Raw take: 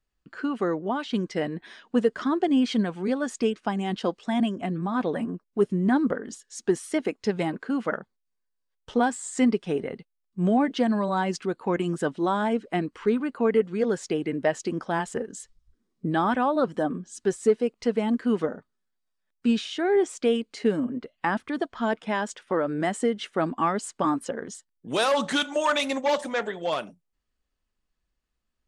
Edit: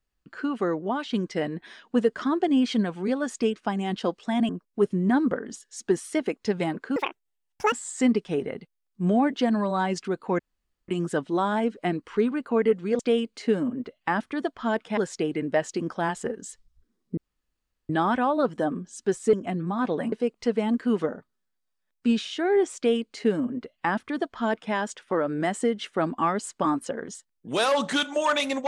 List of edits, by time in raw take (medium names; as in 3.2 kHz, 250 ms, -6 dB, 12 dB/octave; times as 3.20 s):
4.49–5.28 s: move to 17.52 s
7.75–9.10 s: speed 177%
11.77 s: insert room tone 0.49 s
16.08 s: insert room tone 0.72 s
20.16–22.14 s: copy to 13.88 s